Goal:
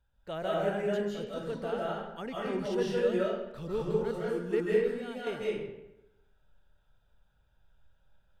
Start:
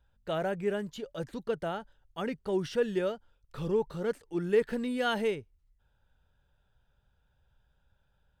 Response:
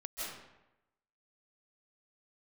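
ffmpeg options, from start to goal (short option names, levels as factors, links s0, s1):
-filter_complex "[0:a]asettb=1/sr,asplit=3[s0][s1][s2];[s0]atrim=end=4.604[s3];[s1]atrim=start=4.6:end=5.27,asetpts=PTS-STARTPTS,afade=t=in:d=0.004:c=qsin,afade=t=out:st=0.666:d=0.004:c=qsin,acompressor=threshold=0.0126:ratio=6[s4];[s2]atrim=start=5.266[s5];[s3][s4]acrossfade=d=0.004:c1=hsin:c2=qsin[s6];[s6][s5]acrossfade=d=0.004:c1=qsin:c2=hsin[s7];[1:a]atrim=start_sample=2205[s8];[s7][s8]afir=irnorm=-1:irlink=0"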